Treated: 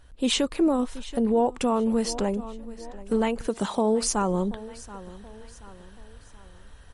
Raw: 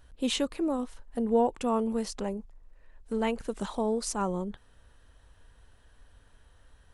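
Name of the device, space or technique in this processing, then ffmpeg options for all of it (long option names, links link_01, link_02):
low-bitrate web radio: -filter_complex "[0:a]asettb=1/sr,asplit=3[link_01][link_02][link_03];[link_01]atrim=end=3.474[link_04];[link_02]atrim=start=3.47:end=4.03,asetpts=PTS-STARTPTS,afade=type=in:duration=0.004:curve=qsin,afade=type=out:start_time=0.556:duration=0.004:curve=qsin,highpass=93[link_05];[link_03]atrim=start=4.026[link_06];[link_04][link_05]acrossfade=duration=0.004:curve1=hsin:curve2=qsin[link_07];[link_07][link_06]acrossfade=duration=0.004:curve1=qsin:curve2=hsin,aecho=1:1:729|1458|2187:0.0944|0.0415|0.0183,dynaudnorm=framelen=220:gausssize=3:maxgain=6dB,alimiter=limit=-17.5dB:level=0:latency=1:release=214,volume=3.5dB" -ar 48000 -c:a libmp3lame -b:a 48k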